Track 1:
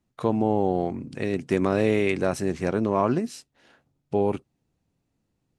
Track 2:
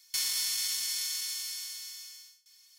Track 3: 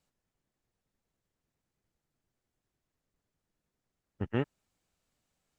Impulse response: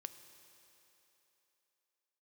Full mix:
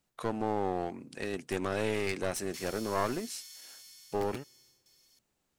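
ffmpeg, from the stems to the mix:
-filter_complex "[0:a]highpass=f=600:p=1,highshelf=f=9.6k:g=11,volume=-2.5dB[a];[1:a]acompressor=mode=upward:threshold=-40dB:ratio=2.5,adelay=2400,volume=-15.5dB[b];[2:a]acompressor=threshold=-38dB:ratio=12,aeval=exprs='(mod(33.5*val(0)+1,2)-1)/33.5':c=same,volume=-1.5dB,asplit=2[c][d];[d]volume=-13.5dB[e];[3:a]atrim=start_sample=2205[f];[e][f]afir=irnorm=-1:irlink=0[g];[a][b][c][g]amix=inputs=4:normalize=0,aeval=exprs='clip(val(0),-1,0.0211)':c=same"

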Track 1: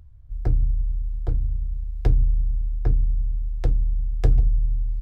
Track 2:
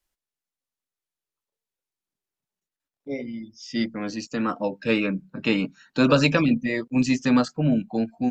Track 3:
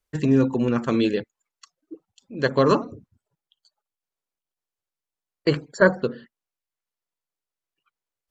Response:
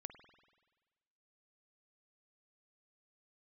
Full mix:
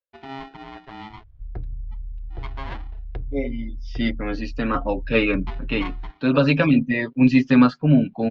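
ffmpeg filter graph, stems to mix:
-filter_complex "[0:a]acompressor=threshold=-28dB:ratio=3,adelay=1100,volume=-2.5dB[a];[1:a]aecho=1:1:7.3:0.56,adelay=250,volume=3dB[b];[2:a]aeval=exprs='val(0)*sgn(sin(2*PI*540*n/s))':c=same,volume=-17.5dB,asplit=2[c][d];[d]apad=whole_len=377626[e];[b][e]sidechaincompress=threshold=-37dB:ratio=8:attack=5.4:release=1160[f];[a][f][c]amix=inputs=3:normalize=0,lowpass=f=3.7k:w=0.5412,lowpass=f=3.7k:w=1.3066"

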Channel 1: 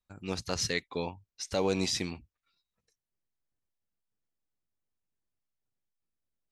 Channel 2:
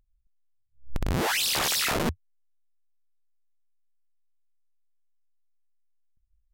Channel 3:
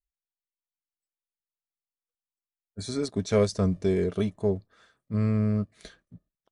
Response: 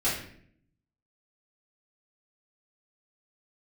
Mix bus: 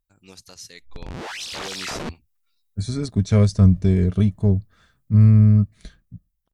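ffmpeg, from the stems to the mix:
-filter_complex "[0:a]aemphasis=mode=production:type=75fm,alimiter=limit=-19dB:level=0:latency=1:release=434,volume=-10.5dB[a];[1:a]lowpass=6.2k,volume=-9.5dB[b];[2:a]asubboost=boost=8:cutoff=160,volume=-4.5dB[c];[a][b][c]amix=inputs=3:normalize=0,dynaudnorm=f=430:g=7:m=7dB"

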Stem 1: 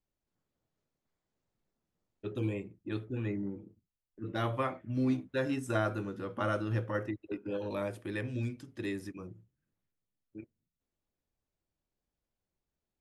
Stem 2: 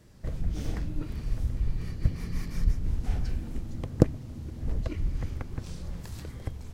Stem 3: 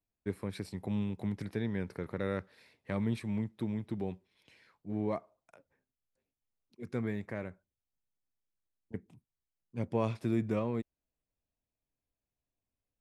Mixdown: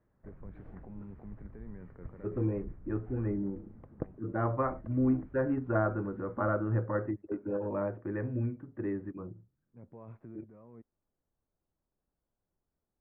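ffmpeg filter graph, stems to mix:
-filter_complex "[0:a]lowpass=2k,volume=2.5dB,asplit=2[a][b];[1:a]lowshelf=f=340:g=-9,volume=-11.5dB[c];[2:a]alimiter=level_in=6.5dB:limit=-24dB:level=0:latency=1:release=27,volume=-6.5dB,volume=-9dB[d];[b]apad=whole_len=573531[e];[d][e]sidechaincompress=threshold=-46dB:ratio=10:attack=16:release=939[f];[a][c][f]amix=inputs=3:normalize=0,lowpass=f=1.6k:w=0.5412,lowpass=f=1.6k:w=1.3066"

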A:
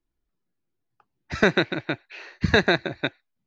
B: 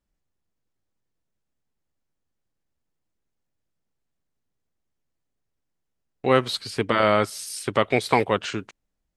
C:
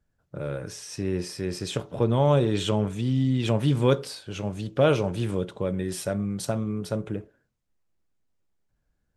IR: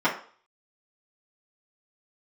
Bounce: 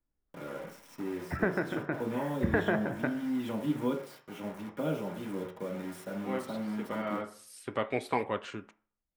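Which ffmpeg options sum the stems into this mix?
-filter_complex "[0:a]lowpass=f=1.8k:w=0.5412,lowpass=f=1.8k:w=1.3066,dynaudnorm=f=230:g=5:m=14.5dB,volume=0dB[a];[1:a]volume=-7.5dB,asplit=2[b][c];[c]volume=-23.5dB[d];[2:a]acrusher=bits=5:mix=0:aa=0.000001,acrossover=split=400|3000[e][f][g];[f]acompressor=threshold=-28dB:ratio=6[h];[e][h][g]amix=inputs=3:normalize=0,volume=-13dB,asplit=3[i][j][k];[j]volume=-6.5dB[l];[k]apad=whole_len=404139[m];[b][m]sidechaincompress=threshold=-47dB:ratio=8:attack=16:release=694[n];[a][i]amix=inputs=2:normalize=0,bandreject=f=48.12:t=h:w=4,bandreject=f=96.24:t=h:w=4,bandreject=f=144.36:t=h:w=4,bandreject=f=192.48:t=h:w=4,bandreject=f=240.6:t=h:w=4,bandreject=f=288.72:t=h:w=4,bandreject=f=336.84:t=h:w=4,bandreject=f=384.96:t=h:w=4,bandreject=f=433.08:t=h:w=4,bandreject=f=481.2:t=h:w=4,bandreject=f=529.32:t=h:w=4,bandreject=f=577.44:t=h:w=4,bandreject=f=625.56:t=h:w=4,bandreject=f=673.68:t=h:w=4,bandreject=f=721.8:t=h:w=4,bandreject=f=769.92:t=h:w=4,bandreject=f=818.04:t=h:w=4,bandreject=f=866.16:t=h:w=4,bandreject=f=914.28:t=h:w=4,bandreject=f=962.4:t=h:w=4,bandreject=f=1.01052k:t=h:w=4,bandreject=f=1.05864k:t=h:w=4,bandreject=f=1.10676k:t=h:w=4,bandreject=f=1.15488k:t=h:w=4,bandreject=f=1.203k:t=h:w=4,bandreject=f=1.25112k:t=h:w=4,bandreject=f=1.29924k:t=h:w=4,bandreject=f=1.34736k:t=h:w=4,bandreject=f=1.39548k:t=h:w=4,bandreject=f=1.4436k:t=h:w=4,bandreject=f=1.49172k:t=h:w=4,bandreject=f=1.53984k:t=h:w=4,bandreject=f=1.58796k:t=h:w=4,bandreject=f=1.63608k:t=h:w=4,bandreject=f=1.6842k:t=h:w=4,bandreject=f=1.73232k:t=h:w=4,bandreject=f=1.78044k:t=h:w=4,bandreject=f=1.82856k:t=h:w=4,acompressor=threshold=-27dB:ratio=2,volume=0dB[o];[3:a]atrim=start_sample=2205[p];[d][l]amix=inputs=2:normalize=0[q];[q][p]afir=irnorm=-1:irlink=0[r];[n][o][r]amix=inputs=3:normalize=0,equalizer=f=5.1k:t=o:w=1.3:g=-6,flanger=delay=1.3:depth=7.8:regen=-84:speed=0.34:shape=sinusoidal"

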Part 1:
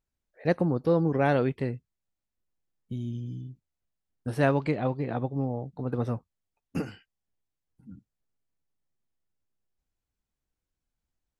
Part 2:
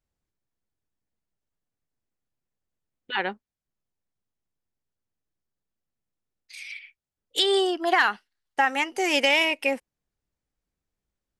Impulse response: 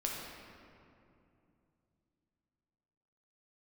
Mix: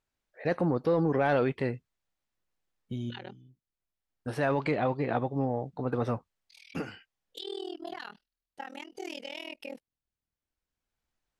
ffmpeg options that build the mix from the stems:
-filter_complex "[0:a]alimiter=limit=-19dB:level=0:latency=1:release=12,asplit=2[a][b];[b]highpass=f=720:p=1,volume=9dB,asoftclip=type=tanh:threshold=-15dB[c];[a][c]amix=inputs=2:normalize=0,lowpass=f=3.6k:p=1,volume=-6dB,volume=2dB[d];[1:a]equalizer=f=1k:t=o:w=1:g=-7,equalizer=f=2k:t=o:w=1:g=-9,equalizer=f=4k:t=o:w=1:g=4,equalizer=f=8k:t=o:w=1:g=-9,alimiter=limit=-21.5dB:level=0:latency=1:release=137,tremolo=f=40:d=1,volume=-5.5dB,asplit=2[e][f];[f]apad=whole_len=502538[g];[d][g]sidechaincompress=threshold=-51dB:ratio=12:attack=12:release=1150[h];[h][e]amix=inputs=2:normalize=0"

